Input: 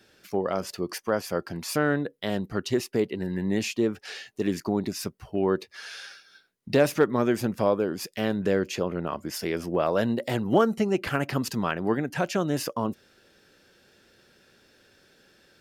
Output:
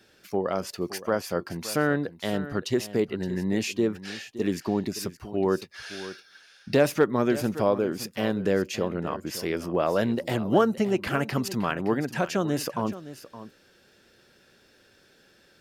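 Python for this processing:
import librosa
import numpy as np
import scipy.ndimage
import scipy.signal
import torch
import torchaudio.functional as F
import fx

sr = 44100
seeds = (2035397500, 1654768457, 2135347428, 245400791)

y = x + 10.0 ** (-14.5 / 20.0) * np.pad(x, (int(568 * sr / 1000.0), 0))[:len(x)]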